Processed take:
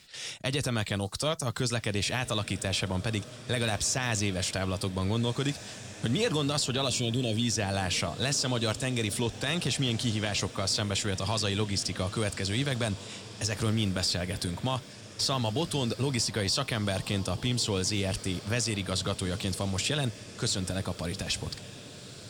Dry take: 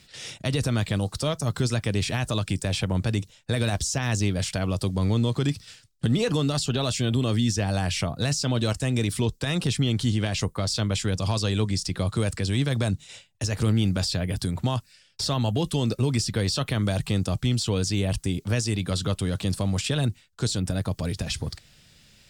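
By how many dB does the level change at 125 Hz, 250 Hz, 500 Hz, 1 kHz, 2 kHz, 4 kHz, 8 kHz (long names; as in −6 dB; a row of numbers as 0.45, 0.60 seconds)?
−7.0, −5.5, −2.5, −1.0, 0.0, 0.0, 0.0 decibels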